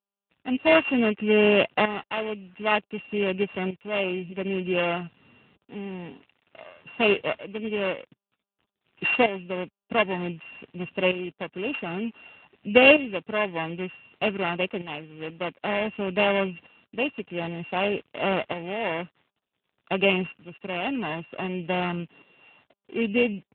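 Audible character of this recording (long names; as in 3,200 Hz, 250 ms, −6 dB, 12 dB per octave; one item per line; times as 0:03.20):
a buzz of ramps at a fixed pitch in blocks of 16 samples
tremolo saw up 0.54 Hz, depth 70%
a quantiser's noise floor 10 bits, dither none
AMR narrowband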